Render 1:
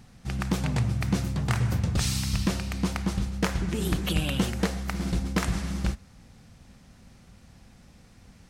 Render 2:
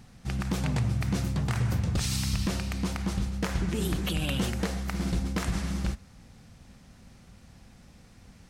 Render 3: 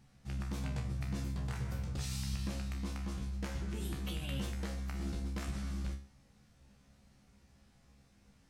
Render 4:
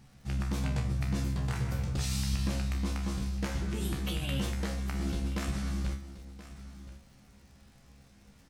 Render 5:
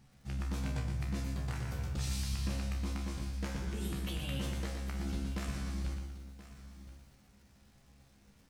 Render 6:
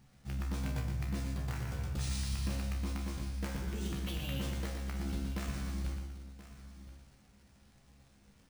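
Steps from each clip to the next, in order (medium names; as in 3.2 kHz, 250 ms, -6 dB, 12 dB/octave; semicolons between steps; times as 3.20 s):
peak limiter -19 dBFS, peak gain reduction 6 dB
feedback comb 68 Hz, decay 0.36 s, harmonics all, mix 90%; trim -3.5 dB
crackle 130 per s -59 dBFS; delay 1027 ms -15.5 dB; trim +6.5 dB
bit-crushed delay 119 ms, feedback 35%, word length 10-bit, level -6 dB; trim -5.5 dB
careless resampling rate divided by 3×, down none, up hold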